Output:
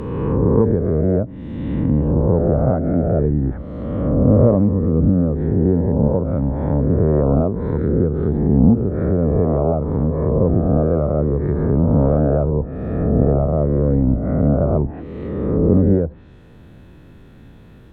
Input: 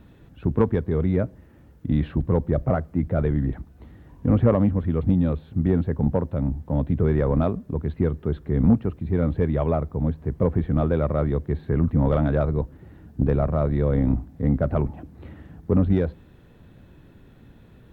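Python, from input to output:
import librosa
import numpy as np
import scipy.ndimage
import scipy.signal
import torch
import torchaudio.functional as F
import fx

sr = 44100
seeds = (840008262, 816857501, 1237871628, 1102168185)

y = fx.spec_swells(x, sr, rise_s=1.89)
y = fx.env_lowpass_down(y, sr, base_hz=710.0, full_db=-16.0)
y = fx.end_taper(y, sr, db_per_s=290.0)
y = y * librosa.db_to_amplitude(3.0)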